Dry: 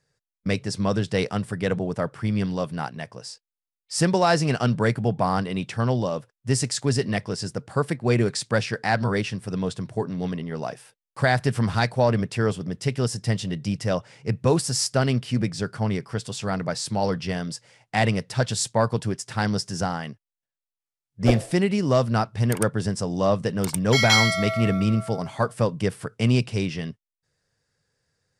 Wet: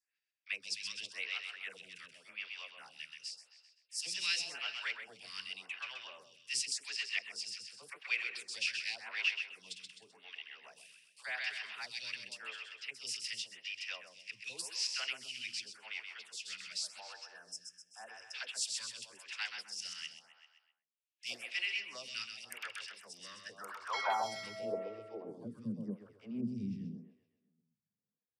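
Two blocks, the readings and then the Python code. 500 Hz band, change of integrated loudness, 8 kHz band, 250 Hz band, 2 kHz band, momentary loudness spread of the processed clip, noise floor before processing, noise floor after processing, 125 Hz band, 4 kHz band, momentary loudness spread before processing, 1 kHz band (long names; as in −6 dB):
−25.0 dB, −15.5 dB, −11.5 dB, −23.5 dB, −10.5 dB, 14 LU, below −85 dBFS, below −85 dBFS, below −30 dB, −8.5 dB, 9 LU, −17.5 dB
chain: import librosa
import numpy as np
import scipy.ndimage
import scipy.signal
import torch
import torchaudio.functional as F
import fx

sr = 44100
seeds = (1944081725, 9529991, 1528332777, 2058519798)

p1 = librosa.effects.preemphasis(x, coef=0.9, zi=[0.0])
p2 = fx.spec_box(p1, sr, start_s=17.0, length_s=1.34, low_hz=1800.0, high_hz=5000.0, gain_db=-26)
p3 = fx.dynamic_eq(p2, sr, hz=5100.0, q=2.5, threshold_db=-49.0, ratio=4.0, max_db=5)
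p4 = fx.dispersion(p3, sr, late='lows', ms=60.0, hz=650.0)
p5 = fx.filter_sweep_bandpass(p4, sr, from_hz=2600.0, to_hz=210.0, start_s=22.87, end_s=25.76, q=4.6)
p6 = p5 + fx.echo_feedback(p5, sr, ms=129, feedback_pct=49, wet_db=-6.5, dry=0)
p7 = fx.stagger_phaser(p6, sr, hz=0.89)
y = p7 * 10.0 ** (13.0 / 20.0)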